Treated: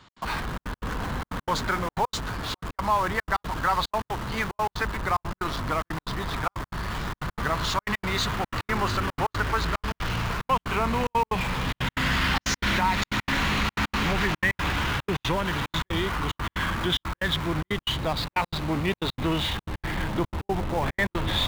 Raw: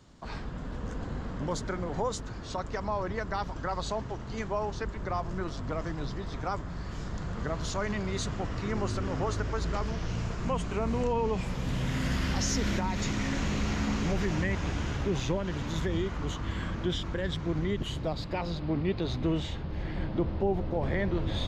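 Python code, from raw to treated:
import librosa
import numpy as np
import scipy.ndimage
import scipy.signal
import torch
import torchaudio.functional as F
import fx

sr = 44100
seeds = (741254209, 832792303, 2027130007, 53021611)

p1 = fx.band_shelf(x, sr, hz=1900.0, db=11.0, octaves=2.7)
p2 = fx.schmitt(p1, sr, flips_db=-38.5)
p3 = p1 + (p2 * 10.0 ** (-9.0 / 20.0))
y = fx.step_gate(p3, sr, bpm=183, pattern='x.xxxxx.', floor_db=-60.0, edge_ms=4.5)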